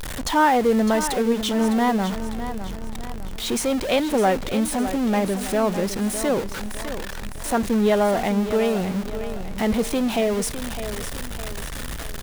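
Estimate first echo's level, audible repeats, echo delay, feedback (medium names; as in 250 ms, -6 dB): -11.0 dB, 4, 607 ms, 44%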